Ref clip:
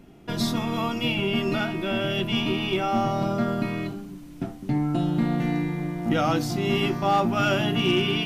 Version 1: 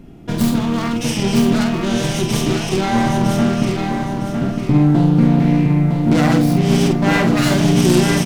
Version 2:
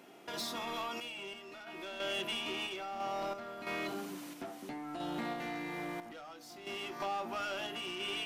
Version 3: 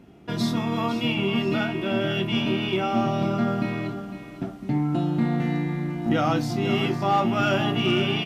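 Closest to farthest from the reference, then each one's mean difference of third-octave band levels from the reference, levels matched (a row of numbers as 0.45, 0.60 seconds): 3, 1, 2; 2.5, 5.0, 9.0 decibels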